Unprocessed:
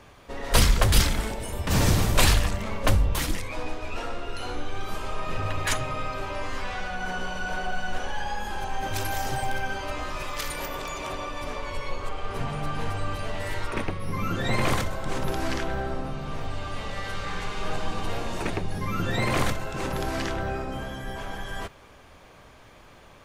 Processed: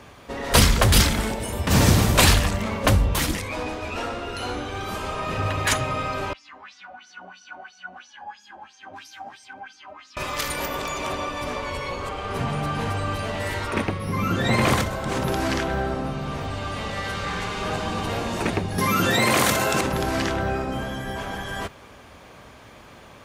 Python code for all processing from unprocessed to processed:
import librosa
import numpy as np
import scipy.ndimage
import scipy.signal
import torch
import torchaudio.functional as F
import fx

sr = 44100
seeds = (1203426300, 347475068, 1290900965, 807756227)

y = fx.chain(x, sr, fx.filter_lfo_bandpass(shape='sine', hz=3.0, low_hz=620.0, high_hz=6000.0, q=5.9),
    fx.low_shelf_res(hz=370.0, db=7.0, q=3.0),
    fx.ensemble(), at=(6.33, 10.17))
y = fx.chain(y, sr, fx.highpass(hz=250.0, slope=6),
    fx.high_shelf(hz=6400.0, db=10.0),
    fx.env_flatten(amount_pct=70), at=(18.78, 19.81))
y = scipy.signal.sosfilt(scipy.signal.butter(2, 53.0, 'highpass', fs=sr, output='sos'), y)
y = fx.peak_eq(y, sr, hz=230.0, db=3.5, octaves=0.33)
y = F.gain(torch.from_numpy(y), 5.0).numpy()